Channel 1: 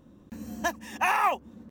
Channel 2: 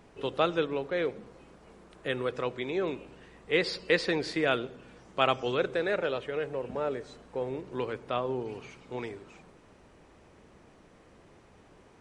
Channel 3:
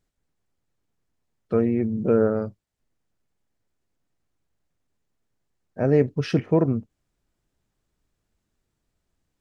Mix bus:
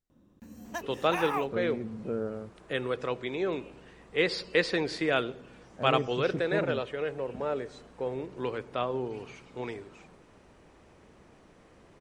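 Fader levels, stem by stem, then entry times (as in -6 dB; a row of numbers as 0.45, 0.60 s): -8.5, 0.0, -13.5 dB; 0.10, 0.65, 0.00 s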